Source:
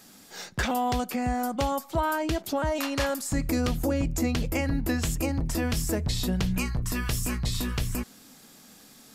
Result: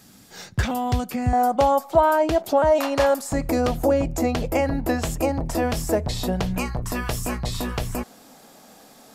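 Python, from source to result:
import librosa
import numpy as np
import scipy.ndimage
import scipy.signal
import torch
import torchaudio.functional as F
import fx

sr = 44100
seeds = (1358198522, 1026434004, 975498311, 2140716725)

y = fx.peak_eq(x, sr, hz=fx.steps((0.0, 97.0), (1.33, 680.0)), db=13.0, octaves=1.5)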